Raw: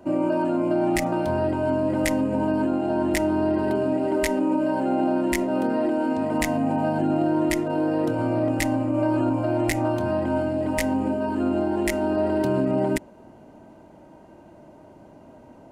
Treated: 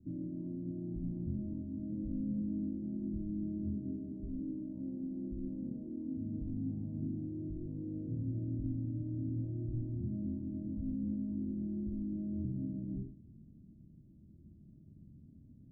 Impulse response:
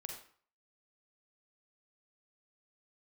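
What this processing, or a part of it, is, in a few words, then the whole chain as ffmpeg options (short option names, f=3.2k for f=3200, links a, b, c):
club heard from the street: -filter_complex "[0:a]alimiter=limit=-18dB:level=0:latency=1:release=13,lowpass=f=200:w=0.5412,lowpass=f=200:w=1.3066[a];[1:a]atrim=start_sample=2205[b];[a][b]afir=irnorm=-1:irlink=0,volume=2dB"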